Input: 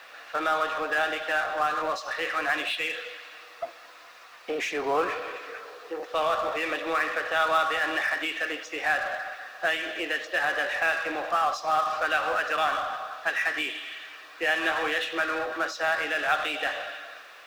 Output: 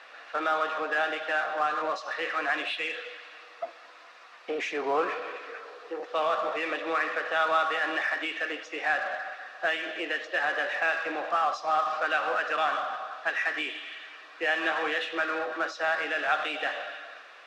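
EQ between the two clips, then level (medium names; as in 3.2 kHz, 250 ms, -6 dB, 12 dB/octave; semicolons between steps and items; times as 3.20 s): band-pass 200–7800 Hz; treble shelf 5.3 kHz -7.5 dB; -1.0 dB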